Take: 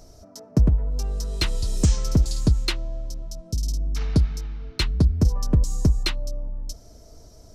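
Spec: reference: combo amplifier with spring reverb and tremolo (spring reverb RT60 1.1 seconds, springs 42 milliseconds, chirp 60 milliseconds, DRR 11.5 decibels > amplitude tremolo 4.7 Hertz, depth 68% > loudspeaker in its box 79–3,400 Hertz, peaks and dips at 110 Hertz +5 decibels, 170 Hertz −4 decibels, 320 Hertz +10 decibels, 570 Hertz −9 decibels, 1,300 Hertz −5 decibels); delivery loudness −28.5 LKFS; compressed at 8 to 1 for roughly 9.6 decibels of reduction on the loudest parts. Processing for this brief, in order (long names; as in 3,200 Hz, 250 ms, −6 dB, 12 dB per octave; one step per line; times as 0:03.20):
downward compressor 8 to 1, threshold −23 dBFS
spring reverb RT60 1.1 s, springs 42 ms, chirp 60 ms, DRR 11.5 dB
amplitude tremolo 4.7 Hz, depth 68%
loudspeaker in its box 79–3,400 Hz, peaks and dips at 110 Hz +5 dB, 170 Hz −4 dB, 320 Hz +10 dB, 570 Hz −9 dB, 1,300 Hz −5 dB
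level +8.5 dB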